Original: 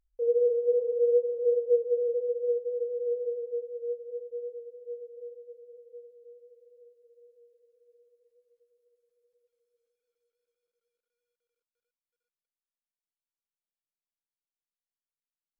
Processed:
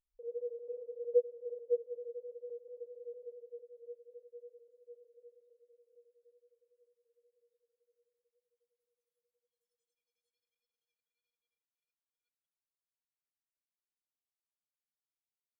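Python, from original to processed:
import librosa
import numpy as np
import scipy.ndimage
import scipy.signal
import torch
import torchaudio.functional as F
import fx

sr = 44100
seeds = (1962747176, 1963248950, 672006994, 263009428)

y = fx.noise_reduce_blind(x, sr, reduce_db=22)
y = y * np.abs(np.cos(np.pi * 11.0 * np.arange(len(y)) / sr))
y = F.gain(torch.from_numpy(y), 8.5).numpy()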